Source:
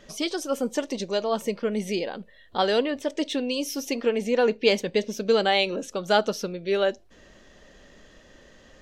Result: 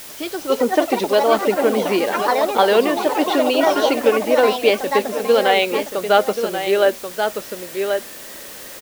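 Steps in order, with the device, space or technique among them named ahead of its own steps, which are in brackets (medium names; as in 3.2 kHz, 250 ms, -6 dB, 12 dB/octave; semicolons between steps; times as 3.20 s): high-pass 160 Hz; delay 1082 ms -9.5 dB; ever faster or slower copies 346 ms, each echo +5 st, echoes 3, each echo -6 dB; dictaphone (band-pass 260–3000 Hz; level rider gain up to 12.5 dB; wow and flutter; white noise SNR 18 dB)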